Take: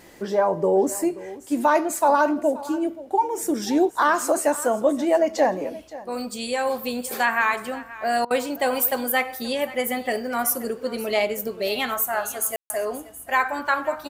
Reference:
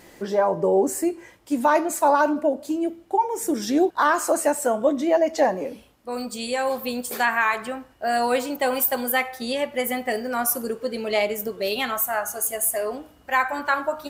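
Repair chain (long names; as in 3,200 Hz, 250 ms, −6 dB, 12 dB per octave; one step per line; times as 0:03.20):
ambience match 0:12.56–0:12.70
repair the gap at 0:08.25, 55 ms
echo removal 529 ms −17.5 dB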